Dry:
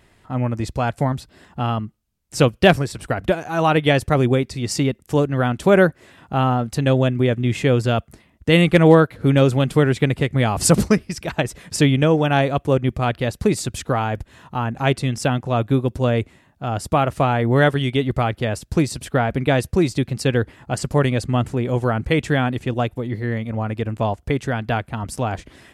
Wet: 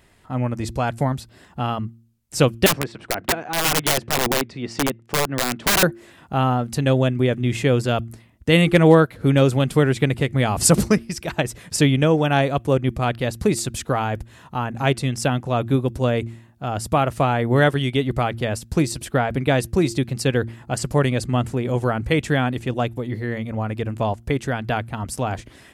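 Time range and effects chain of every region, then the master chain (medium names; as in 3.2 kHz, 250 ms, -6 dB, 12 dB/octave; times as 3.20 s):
2.66–5.83 s: band-pass 170–2800 Hz + integer overflow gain 13 dB
whole clip: treble shelf 6.9 kHz +5 dB; de-hum 114.8 Hz, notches 3; trim -1 dB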